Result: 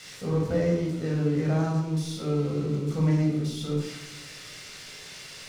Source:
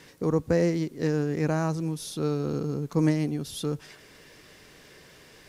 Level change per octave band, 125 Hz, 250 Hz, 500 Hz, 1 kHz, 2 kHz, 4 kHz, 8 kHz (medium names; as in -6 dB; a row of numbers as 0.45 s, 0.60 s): +3.0 dB, 0.0 dB, -1.0 dB, -1.5 dB, -1.0 dB, +3.0 dB, 0.0 dB